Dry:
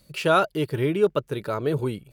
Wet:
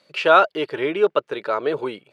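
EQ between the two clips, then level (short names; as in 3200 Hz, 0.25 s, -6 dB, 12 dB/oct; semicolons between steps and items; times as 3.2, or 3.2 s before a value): BPF 490–3600 Hz; +7.0 dB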